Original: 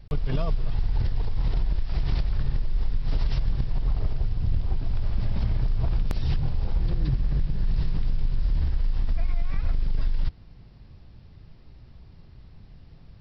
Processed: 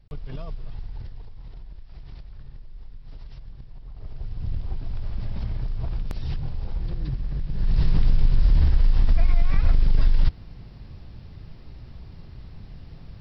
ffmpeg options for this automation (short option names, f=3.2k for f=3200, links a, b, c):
-af "volume=14dB,afade=t=out:st=0.7:d=0.68:silence=0.421697,afade=t=in:st=3.93:d=0.54:silence=0.237137,afade=t=in:st=7.45:d=0.48:silence=0.298538"